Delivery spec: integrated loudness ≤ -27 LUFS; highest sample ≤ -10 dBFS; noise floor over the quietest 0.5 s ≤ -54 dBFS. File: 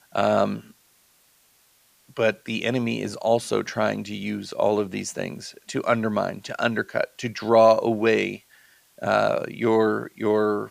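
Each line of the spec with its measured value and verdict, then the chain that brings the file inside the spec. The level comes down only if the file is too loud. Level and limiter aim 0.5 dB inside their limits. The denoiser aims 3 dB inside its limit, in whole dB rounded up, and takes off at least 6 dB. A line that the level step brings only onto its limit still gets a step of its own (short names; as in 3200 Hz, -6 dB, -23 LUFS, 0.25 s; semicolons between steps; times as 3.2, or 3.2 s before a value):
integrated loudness -23.5 LUFS: fail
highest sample -6.0 dBFS: fail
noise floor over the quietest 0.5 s -61 dBFS: OK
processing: gain -4 dB; limiter -10.5 dBFS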